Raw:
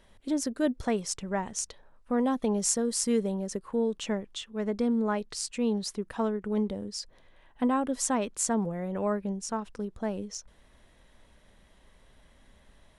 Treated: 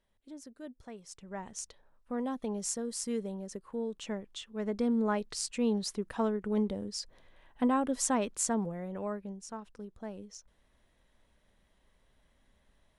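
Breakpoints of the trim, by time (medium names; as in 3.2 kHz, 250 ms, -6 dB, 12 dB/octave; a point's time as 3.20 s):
0.97 s -18.5 dB
1.48 s -8 dB
3.85 s -8 dB
5.05 s -1.5 dB
8.32 s -1.5 dB
9.37 s -10 dB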